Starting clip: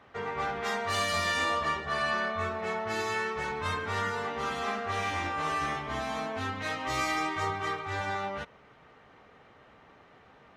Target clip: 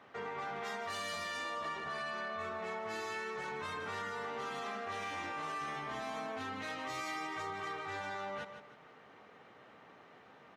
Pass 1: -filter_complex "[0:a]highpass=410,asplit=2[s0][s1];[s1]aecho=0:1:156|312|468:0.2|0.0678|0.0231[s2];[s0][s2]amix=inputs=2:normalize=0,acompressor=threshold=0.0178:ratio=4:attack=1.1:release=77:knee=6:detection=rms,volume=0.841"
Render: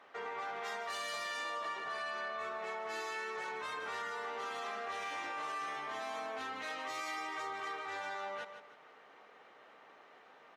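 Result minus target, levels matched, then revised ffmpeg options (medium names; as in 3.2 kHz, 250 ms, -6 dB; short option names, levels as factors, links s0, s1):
125 Hz band -14.0 dB
-filter_complex "[0:a]highpass=150,asplit=2[s0][s1];[s1]aecho=0:1:156|312|468:0.2|0.0678|0.0231[s2];[s0][s2]amix=inputs=2:normalize=0,acompressor=threshold=0.0178:ratio=4:attack=1.1:release=77:knee=6:detection=rms,volume=0.841"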